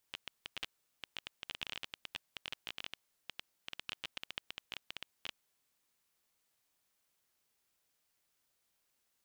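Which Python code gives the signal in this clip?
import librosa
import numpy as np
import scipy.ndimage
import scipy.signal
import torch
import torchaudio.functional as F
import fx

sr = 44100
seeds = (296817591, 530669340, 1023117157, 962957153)

y = fx.geiger_clicks(sr, seeds[0], length_s=5.2, per_s=15.0, level_db=-23.5)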